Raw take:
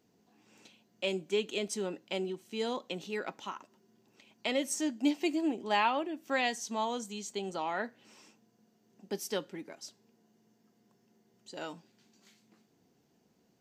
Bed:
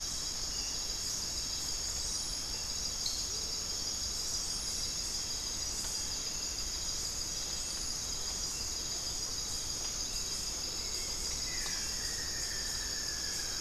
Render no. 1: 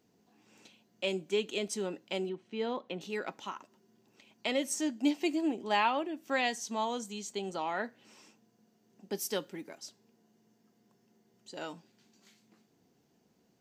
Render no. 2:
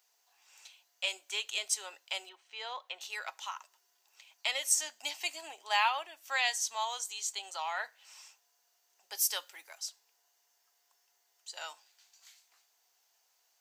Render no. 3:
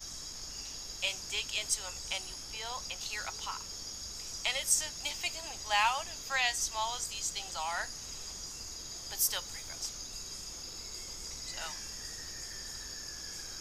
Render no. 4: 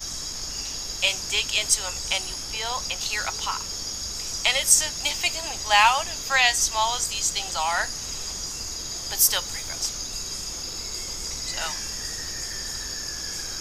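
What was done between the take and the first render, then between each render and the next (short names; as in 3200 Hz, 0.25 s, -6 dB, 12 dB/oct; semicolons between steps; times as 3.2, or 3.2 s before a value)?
2.29–3.01 LPF 2800 Hz; 9.16–9.78 high shelf 9200 Hz +9.5 dB
HPF 770 Hz 24 dB/oct; high shelf 3900 Hz +10.5 dB
add bed -6.5 dB
gain +11 dB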